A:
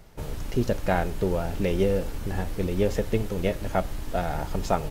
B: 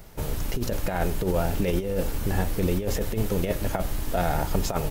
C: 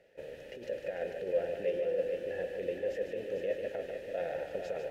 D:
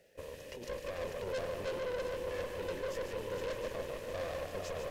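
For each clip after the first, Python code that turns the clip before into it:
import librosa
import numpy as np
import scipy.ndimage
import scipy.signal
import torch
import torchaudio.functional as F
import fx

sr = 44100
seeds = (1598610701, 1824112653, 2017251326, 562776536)

y1 = fx.high_shelf(x, sr, hz=11000.0, db=12.0)
y1 = fx.over_compress(y1, sr, threshold_db=-25.0, ratio=-0.5)
y1 = y1 * 10.0 ** (2.5 / 20.0)
y2 = fx.vowel_filter(y1, sr, vowel='e')
y2 = fx.echo_heads(y2, sr, ms=149, heads='first and third', feedback_pct=49, wet_db=-7)
y3 = fx.tube_stage(y2, sr, drive_db=37.0, bias=0.7)
y3 = fx.bass_treble(y3, sr, bass_db=4, treble_db=13)
y3 = fx.echo_split(y3, sr, split_hz=770.0, low_ms=289, high_ms=706, feedback_pct=52, wet_db=-9.5)
y3 = y3 * 10.0 ** (2.0 / 20.0)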